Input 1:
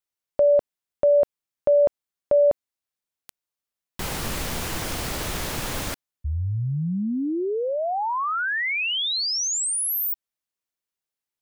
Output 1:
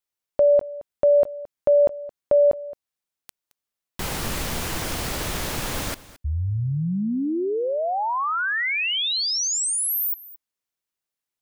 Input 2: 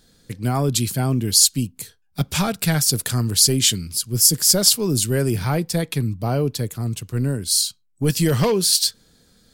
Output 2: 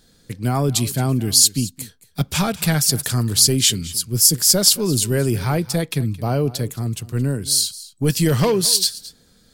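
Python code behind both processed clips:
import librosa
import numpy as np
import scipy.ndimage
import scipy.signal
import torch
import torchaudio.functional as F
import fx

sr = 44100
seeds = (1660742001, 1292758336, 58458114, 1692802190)

y = x + 10.0 ** (-18.5 / 20.0) * np.pad(x, (int(220 * sr / 1000.0), 0))[:len(x)]
y = y * librosa.db_to_amplitude(1.0)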